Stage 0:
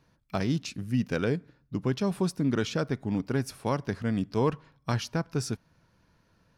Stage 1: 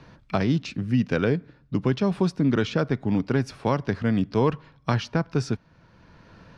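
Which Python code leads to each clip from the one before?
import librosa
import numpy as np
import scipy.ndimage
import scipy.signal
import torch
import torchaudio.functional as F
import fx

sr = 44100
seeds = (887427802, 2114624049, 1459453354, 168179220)

y = scipy.signal.sosfilt(scipy.signal.butter(2, 4300.0, 'lowpass', fs=sr, output='sos'), x)
y = fx.band_squash(y, sr, depth_pct=40)
y = y * 10.0 ** (5.0 / 20.0)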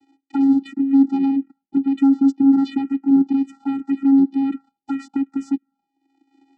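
y = fx.leveller(x, sr, passes=3)
y = fx.vocoder(y, sr, bands=8, carrier='square', carrier_hz=273.0)
y = fx.env_phaser(y, sr, low_hz=200.0, high_hz=2600.0, full_db=-12.0)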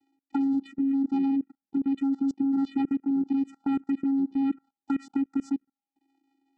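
y = fx.level_steps(x, sr, step_db=24)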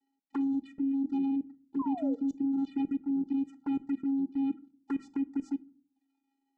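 y = fx.env_flanger(x, sr, rest_ms=4.7, full_db=-22.0)
y = fx.spec_paint(y, sr, seeds[0], shape='fall', start_s=1.79, length_s=0.37, low_hz=450.0, high_hz=1100.0, level_db=-35.0)
y = fx.room_shoebox(y, sr, seeds[1], volume_m3=340.0, walls='furnished', distance_m=0.3)
y = y * 10.0 ** (-4.5 / 20.0)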